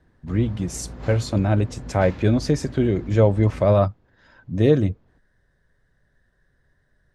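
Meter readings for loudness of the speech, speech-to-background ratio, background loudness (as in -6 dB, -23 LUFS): -21.5 LUFS, 17.0 dB, -38.5 LUFS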